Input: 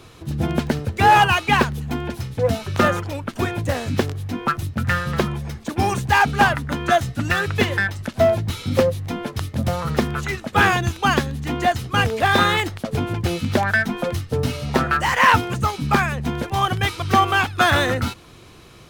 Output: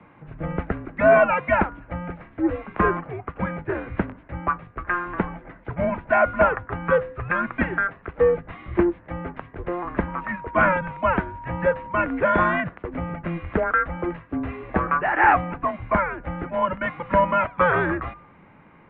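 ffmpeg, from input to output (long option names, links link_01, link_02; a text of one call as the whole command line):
ffmpeg -i in.wav -filter_complex "[0:a]bandreject=frequency=229.8:width_type=h:width=4,bandreject=frequency=459.6:width_type=h:width=4,bandreject=frequency=689.4:width_type=h:width=4,bandreject=frequency=919.2:width_type=h:width=4,bandreject=frequency=1149:width_type=h:width=4,bandreject=frequency=1378.8:width_type=h:width=4,bandreject=frequency=1608.6:width_type=h:width=4,afreqshift=-27,asettb=1/sr,asplit=3[link_01][link_02][link_03];[link_01]atrim=end=10.084[link_04];[link_02]atrim=start=10.08:end=12.05,asetpts=PTS-STARTPTS,afade=type=in:duration=0.004:curve=qsin,afade=type=out:start_time=1.966:duration=0.004:curve=qsin,aeval=exprs='val(0)+0.02*sin(2*PI*1100*n/s)':channel_layout=same[link_05];[link_03]atrim=start=12.046[link_06];[link_04][link_05]acrossfade=duration=0.004:curve1=hsin:curve2=qsin[link_07];[link_07][link_06]acrossfade=duration=0.004:curve1=qsin:curve2=hsin,highpass=frequency=230:width_type=q:width=0.5412,highpass=frequency=230:width_type=q:width=1.307,lowpass=frequency=2300:width_type=q:width=0.5176,lowpass=frequency=2300:width_type=q:width=0.7071,lowpass=frequency=2300:width_type=q:width=1.932,afreqshift=-150,volume=-1.5dB" out.wav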